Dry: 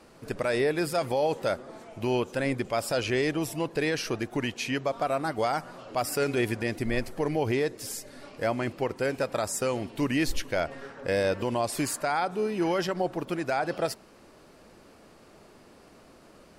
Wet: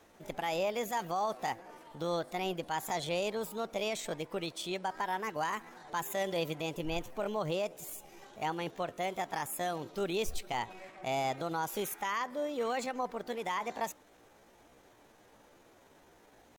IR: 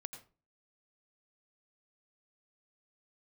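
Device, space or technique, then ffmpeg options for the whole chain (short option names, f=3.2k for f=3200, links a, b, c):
chipmunk voice: -af "asetrate=60591,aresample=44100,atempo=0.727827,volume=-7dB"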